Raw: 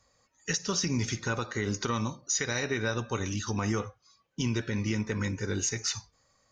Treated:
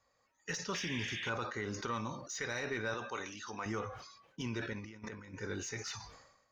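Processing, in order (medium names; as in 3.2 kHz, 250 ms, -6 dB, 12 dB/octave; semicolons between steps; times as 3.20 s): 0.74–1.30 s: painted sound noise 1.6–3.7 kHz -35 dBFS; 2.94–3.66 s: high-pass 530 Hz 6 dB/octave; 4.73–5.34 s: compressor with a negative ratio -38 dBFS, ratio -0.5; overdrive pedal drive 9 dB, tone 1.8 kHz, clips at -16.5 dBFS; decay stretcher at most 60 dB/s; trim -7 dB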